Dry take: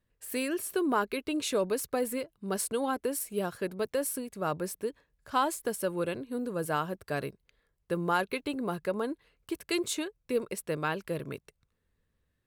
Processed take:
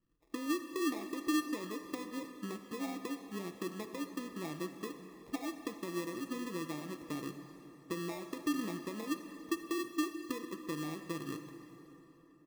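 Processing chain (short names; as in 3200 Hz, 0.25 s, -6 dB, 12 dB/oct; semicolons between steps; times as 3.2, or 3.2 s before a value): comb 6.1 ms, depth 41%; compressor, threshold -37 dBFS, peak gain reduction 14.5 dB; vocal tract filter u; sample-rate reducer 1500 Hz, jitter 0%; plate-style reverb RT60 3.7 s, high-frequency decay 0.7×, DRR 7 dB; gain +9.5 dB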